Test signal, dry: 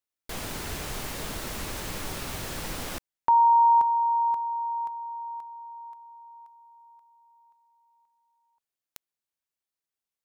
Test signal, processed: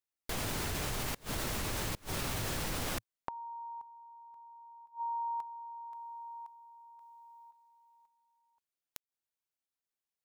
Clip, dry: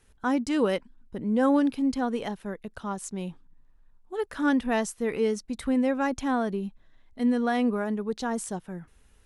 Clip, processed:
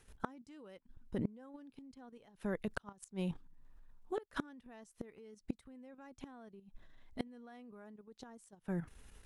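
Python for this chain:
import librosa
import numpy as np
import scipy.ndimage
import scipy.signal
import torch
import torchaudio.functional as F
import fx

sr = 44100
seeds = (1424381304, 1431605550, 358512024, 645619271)

y = fx.dynamic_eq(x, sr, hz=110.0, q=2.6, threshold_db=-52.0, ratio=3.0, max_db=5)
y = fx.level_steps(y, sr, step_db=10)
y = fx.gate_flip(y, sr, shuts_db=-28.0, range_db=-28)
y = y * 10.0 ** (4.5 / 20.0)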